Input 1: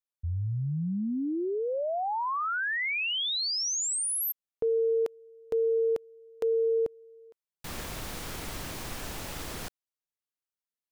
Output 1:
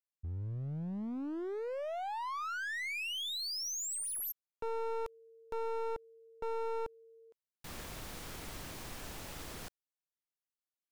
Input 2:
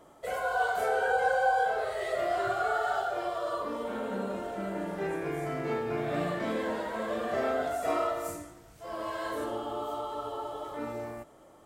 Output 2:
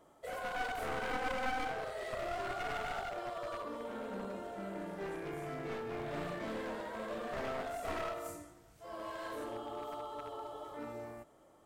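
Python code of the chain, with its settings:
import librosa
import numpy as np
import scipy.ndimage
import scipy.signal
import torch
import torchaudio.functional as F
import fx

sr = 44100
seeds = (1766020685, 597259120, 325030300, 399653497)

y = np.minimum(x, 2.0 * 10.0 ** (-29.0 / 20.0) - x)
y = y * 10.0 ** (-7.5 / 20.0)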